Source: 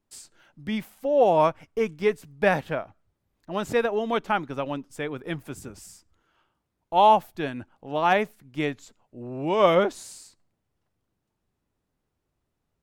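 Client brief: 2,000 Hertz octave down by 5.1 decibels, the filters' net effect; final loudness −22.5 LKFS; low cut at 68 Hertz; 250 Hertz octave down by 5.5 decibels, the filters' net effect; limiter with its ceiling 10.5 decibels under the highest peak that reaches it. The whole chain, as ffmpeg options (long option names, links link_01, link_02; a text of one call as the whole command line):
ffmpeg -i in.wav -af "highpass=68,equalizer=frequency=250:width_type=o:gain=-7.5,equalizer=frequency=2000:width_type=o:gain=-6.5,volume=8.5dB,alimiter=limit=-10dB:level=0:latency=1" out.wav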